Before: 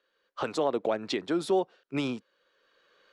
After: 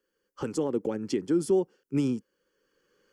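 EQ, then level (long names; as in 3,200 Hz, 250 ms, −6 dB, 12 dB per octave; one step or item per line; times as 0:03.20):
flat-topped bell 1,600 Hz −14.5 dB
phaser with its sweep stopped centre 1,600 Hz, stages 4
+7.0 dB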